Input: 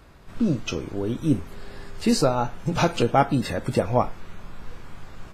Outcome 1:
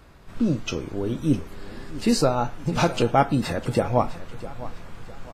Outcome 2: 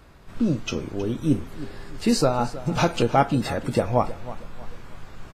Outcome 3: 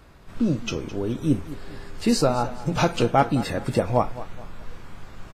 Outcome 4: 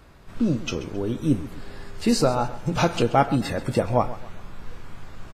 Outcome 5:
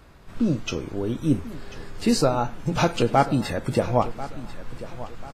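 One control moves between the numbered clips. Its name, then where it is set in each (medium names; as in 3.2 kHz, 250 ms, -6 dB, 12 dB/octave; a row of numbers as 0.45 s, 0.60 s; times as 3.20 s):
feedback delay, time: 655 ms, 317 ms, 212 ms, 133 ms, 1041 ms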